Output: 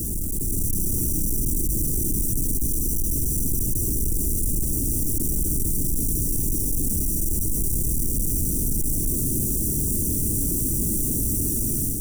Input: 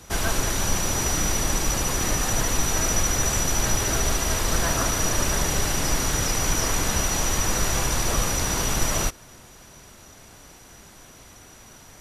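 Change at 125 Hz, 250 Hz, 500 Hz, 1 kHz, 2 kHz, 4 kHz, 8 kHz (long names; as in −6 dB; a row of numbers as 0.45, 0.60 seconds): +2.0 dB, +3.0 dB, −7.0 dB, below −30 dB, below −40 dB, −19.0 dB, −2.0 dB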